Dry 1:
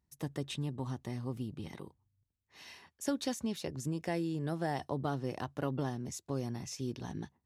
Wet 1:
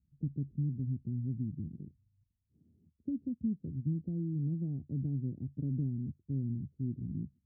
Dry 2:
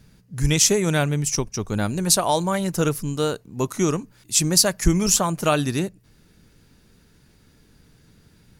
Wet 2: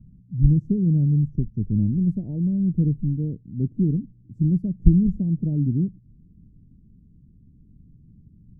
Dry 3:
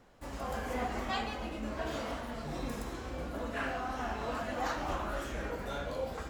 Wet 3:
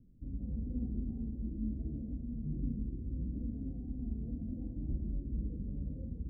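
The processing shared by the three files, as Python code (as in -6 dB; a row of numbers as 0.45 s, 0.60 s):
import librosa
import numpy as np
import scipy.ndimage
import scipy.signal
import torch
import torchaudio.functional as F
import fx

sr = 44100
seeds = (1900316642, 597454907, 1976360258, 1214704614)

y = scipy.signal.sosfilt(scipy.signal.cheby2(4, 70, 1100.0, 'lowpass', fs=sr, output='sos'), x)
y = y * librosa.db_to_amplitude(5.0)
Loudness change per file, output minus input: +1.0 LU, -1.5 LU, -2.5 LU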